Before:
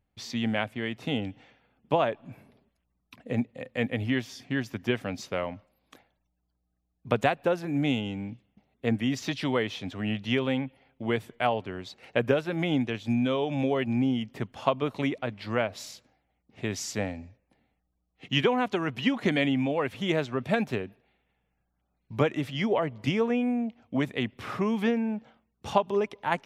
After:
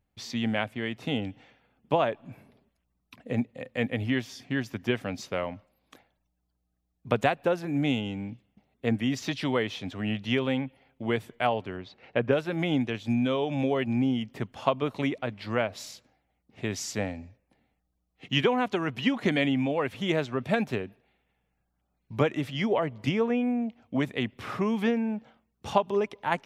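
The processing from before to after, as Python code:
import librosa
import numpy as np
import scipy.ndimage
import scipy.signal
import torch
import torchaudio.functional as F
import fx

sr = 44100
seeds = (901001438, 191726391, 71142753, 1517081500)

y = fx.air_absorb(x, sr, metres=200.0, at=(11.76, 12.31), fade=0.02)
y = fx.high_shelf(y, sr, hz=5400.0, db=-7.0, at=(23.09, 23.62))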